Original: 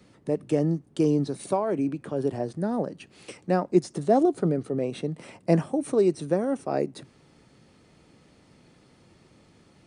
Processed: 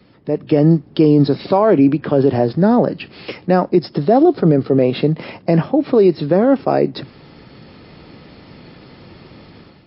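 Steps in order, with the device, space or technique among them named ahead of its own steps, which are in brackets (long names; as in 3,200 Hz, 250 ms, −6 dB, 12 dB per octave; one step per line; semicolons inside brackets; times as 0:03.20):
low-bitrate web radio (automatic gain control gain up to 11 dB; brickwall limiter −9 dBFS, peak gain reduction 7.5 dB; level +6 dB; MP3 32 kbit/s 12,000 Hz)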